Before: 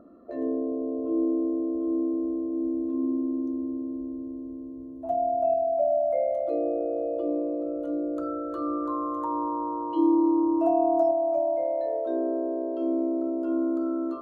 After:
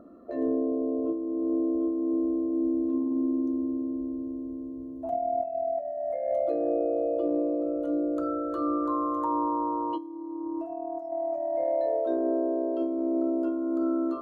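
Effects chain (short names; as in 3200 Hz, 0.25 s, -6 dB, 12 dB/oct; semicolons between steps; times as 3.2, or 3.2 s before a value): negative-ratio compressor -27 dBFS, ratio -0.5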